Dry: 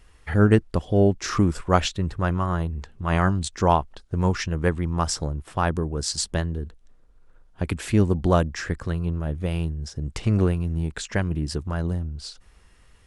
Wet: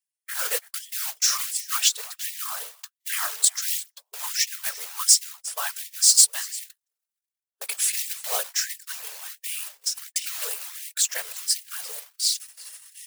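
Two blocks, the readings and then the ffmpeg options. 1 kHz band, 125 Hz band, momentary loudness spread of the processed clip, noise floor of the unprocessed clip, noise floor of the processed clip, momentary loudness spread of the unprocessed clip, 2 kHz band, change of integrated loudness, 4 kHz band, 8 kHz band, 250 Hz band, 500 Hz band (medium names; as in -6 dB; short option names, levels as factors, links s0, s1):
-11.0 dB, under -40 dB, 16 LU, -55 dBFS, under -85 dBFS, 10 LU, -2.0 dB, +1.0 dB, +8.5 dB, +14.5 dB, under -40 dB, -18.5 dB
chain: -filter_complex "[0:a]areverse,acompressor=mode=upward:threshold=0.0562:ratio=2.5,areverse,aemphasis=mode=production:type=cd,acontrast=69,acrusher=bits=3:mode=log:mix=0:aa=0.000001,crystalizer=i=9:c=0,afftfilt=real='hypot(re,im)*cos(2*PI*random(0))':imag='hypot(re,im)*sin(2*PI*random(1))':win_size=512:overlap=0.75,asplit=2[s0][s1];[s1]aecho=0:1:346:0.106[s2];[s0][s2]amix=inputs=2:normalize=0,agate=range=0.01:threshold=0.0708:ratio=16:detection=peak,afftfilt=real='re*gte(b*sr/1024,390*pow(1800/390,0.5+0.5*sin(2*PI*1.4*pts/sr)))':imag='im*gte(b*sr/1024,390*pow(1800/390,0.5+0.5*sin(2*PI*1.4*pts/sr)))':win_size=1024:overlap=0.75,volume=0.251"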